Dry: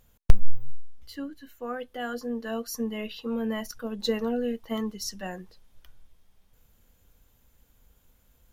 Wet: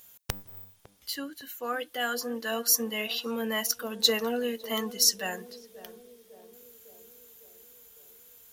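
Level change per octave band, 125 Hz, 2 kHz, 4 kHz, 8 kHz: under -10 dB, +6.5 dB, +10.5 dB, +13.5 dB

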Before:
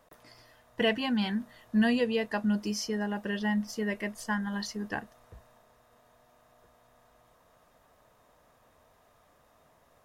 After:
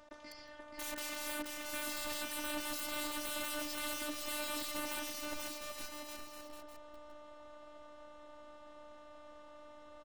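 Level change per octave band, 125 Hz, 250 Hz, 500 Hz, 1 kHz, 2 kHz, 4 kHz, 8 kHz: -23.5 dB, -17.0 dB, -10.5 dB, -5.5 dB, -7.0 dB, -3.0 dB, +3.5 dB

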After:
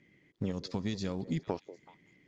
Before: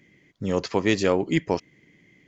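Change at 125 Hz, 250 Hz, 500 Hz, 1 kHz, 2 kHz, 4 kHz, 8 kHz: -6.5 dB, -10.0 dB, -15.5 dB, -14.0 dB, -19.0 dB, -11.5 dB, no reading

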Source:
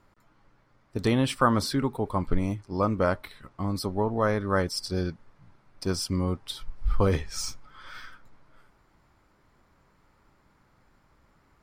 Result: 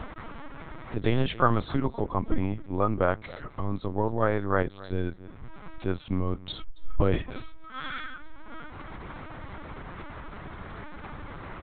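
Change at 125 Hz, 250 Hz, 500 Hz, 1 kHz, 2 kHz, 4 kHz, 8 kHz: -0.5 dB, -2.0 dB, -0.5 dB, 0.0 dB, +0.5 dB, -6.0 dB, under -40 dB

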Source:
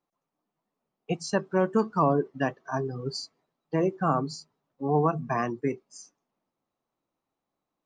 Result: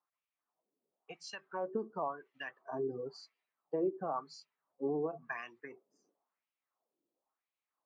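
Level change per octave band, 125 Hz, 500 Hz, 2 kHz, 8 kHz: -22.0 dB, -10.0 dB, -9.0 dB, under -15 dB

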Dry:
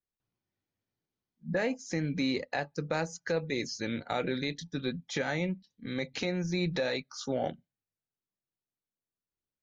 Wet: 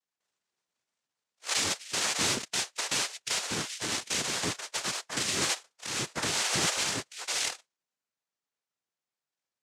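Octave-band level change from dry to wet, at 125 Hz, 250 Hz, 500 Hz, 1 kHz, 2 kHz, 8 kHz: -7.0 dB, -8.0 dB, -7.5 dB, +2.5 dB, +3.5 dB, no reading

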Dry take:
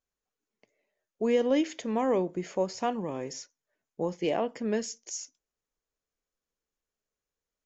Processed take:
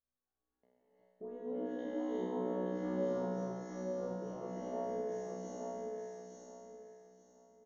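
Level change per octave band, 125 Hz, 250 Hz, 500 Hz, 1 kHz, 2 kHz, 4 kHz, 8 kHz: -4.0 dB, -8.0 dB, -8.0 dB, -10.0 dB, -13.0 dB, under -15 dB, no reading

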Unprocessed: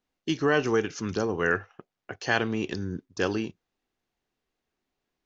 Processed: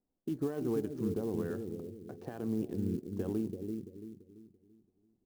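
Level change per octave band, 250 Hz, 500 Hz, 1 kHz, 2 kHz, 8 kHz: -4.0 dB, -9.0 dB, -19.0 dB, -28.5 dB, no reading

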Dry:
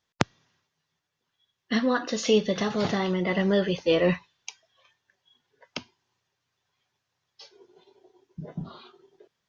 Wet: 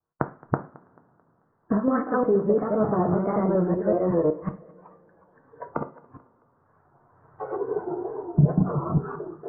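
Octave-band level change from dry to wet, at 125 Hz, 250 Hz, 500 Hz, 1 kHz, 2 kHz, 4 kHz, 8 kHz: +8.5 dB, +3.5 dB, +3.0 dB, +5.0 dB, -7.5 dB, under -40 dB, no reading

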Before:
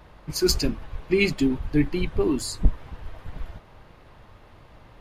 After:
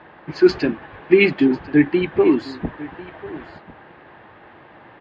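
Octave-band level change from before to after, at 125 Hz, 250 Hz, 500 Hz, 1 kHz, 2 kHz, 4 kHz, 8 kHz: -1.0 dB, +7.5 dB, +9.0 dB, +8.5 dB, +7.5 dB, -3.0 dB, under -20 dB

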